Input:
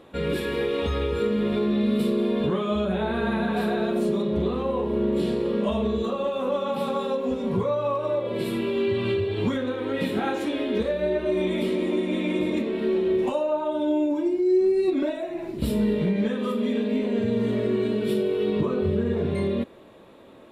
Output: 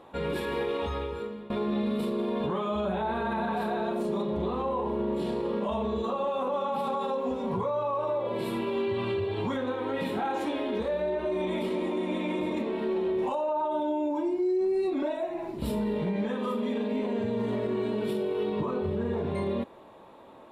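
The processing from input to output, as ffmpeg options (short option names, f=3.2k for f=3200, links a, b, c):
-filter_complex "[0:a]asplit=2[a][b];[a]atrim=end=1.5,asetpts=PTS-STARTPTS,afade=t=out:st=0.7:d=0.8:silence=0.105925[c];[b]atrim=start=1.5,asetpts=PTS-STARTPTS,afade=t=in:d=0.004:c=hsin:silence=0.105925[d];[c][d]concat=n=2:v=0:a=1,equalizer=f=890:t=o:w=0.82:g=11.5,alimiter=limit=-17dB:level=0:latency=1:release=23,volume=-5dB"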